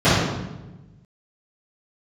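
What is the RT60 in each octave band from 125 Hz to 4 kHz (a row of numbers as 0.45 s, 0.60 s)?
1.7 s, 1.5 s, 1.2 s, 1.0 s, 0.85 s, 0.80 s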